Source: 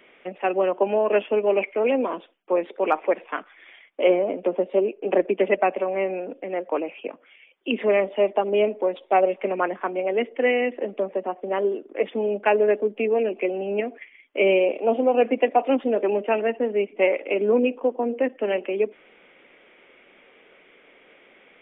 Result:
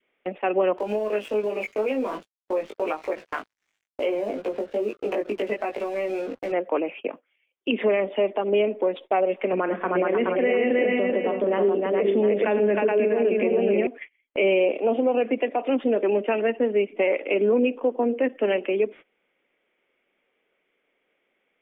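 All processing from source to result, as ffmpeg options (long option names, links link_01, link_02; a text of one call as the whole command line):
ffmpeg -i in.wav -filter_complex "[0:a]asettb=1/sr,asplit=3[link_01][link_02][link_03];[link_01]atrim=end=0.784[link_04];[link_02]atrim=start=0.78:end=6.52,asetpts=PTS-STARTPTS,afade=type=in:duration=0.004:curve=qsin,afade=type=out:start_time=5.736:duration=0.004:curve=qsin,aeval=exprs='sgn(val(0))*max(abs(val(0))-0.00531,0)':channel_layout=same,acompressor=threshold=-28dB:ratio=4:attack=3.2:release=140:knee=1:detection=peak,asplit=2[link_05][link_06];[link_06]adelay=19,volume=-2.5dB[link_07];[link_05][link_07]amix=inputs=2:normalize=0,atrim=end_sample=253134[link_08];[link_03]atrim=start=6.516[link_09];[link_04][link_08]acrossfade=duration=0.004:curve1=hsin:curve2=qsin[link_10];[link_10][link_09]acrossfade=duration=0.004:curve1=qsin:curve2=hsin,asettb=1/sr,asplit=3[link_11][link_12][link_13];[link_11]atrim=end=9.534[link_14];[link_12]atrim=start=9.53:end=13.87,asetpts=PTS-STARTPTS,afade=type=in:duration=0.004:curve=qsin,afade=type=out:start_time=4.336:duration=0.004:curve=qsin,lowshelf=frequency=340:gain=6,aecho=1:1:43|99|311|422|700:0.178|0.15|0.596|0.668|0.237,atrim=end_sample=191394,acrossover=split=2800[link_15][link_16];[link_16]acompressor=threshold=-42dB:ratio=4:attack=1:release=60[link_17];[link_15][link_17]amix=inputs=2:normalize=0[link_18];[link_13]atrim=start=13.866[link_19];[link_14][link_18]acrossfade=duration=0.004:curve1=hsin:curve2=qsin[link_20];[link_20][link_19]acrossfade=duration=0.004:curve1=qsin:curve2=hsin,agate=range=-22dB:threshold=-40dB:ratio=16:detection=peak,alimiter=limit=-15.5dB:level=0:latency=1:release=97,adynamicequalizer=threshold=0.0126:dfrequency=800:dqfactor=1.4:tfrequency=800:tqfactor=1.4:attack=5:release=100:ratio=0.375:range=2:mode=cutabove:tftype=bell,volume=3dB" out.wav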